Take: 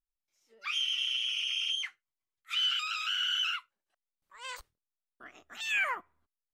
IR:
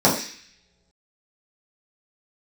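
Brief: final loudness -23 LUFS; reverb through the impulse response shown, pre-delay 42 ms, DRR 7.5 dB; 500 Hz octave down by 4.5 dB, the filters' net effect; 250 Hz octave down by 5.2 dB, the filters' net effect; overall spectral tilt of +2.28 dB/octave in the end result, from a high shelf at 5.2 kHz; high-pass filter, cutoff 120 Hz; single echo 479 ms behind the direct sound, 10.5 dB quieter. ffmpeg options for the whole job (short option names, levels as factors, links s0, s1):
-filter_complex "[0:a]highpass=120,equalizer=f=250:t=o:g=-5,equalizer=f=500:t=o:g=-4.5,highshelf=f=5200:g=-3.5,aecho=1:1:479:0.299,asplit=2[s0][s1];[1:a]atrim=start_sample=2205,adelay=42[s2];[s1][s2]afir=irnorm=-1:irlink=0,volume=0.0376[s3];[s0][s3]amix=inputs=2:normalize=0,volume=2.82"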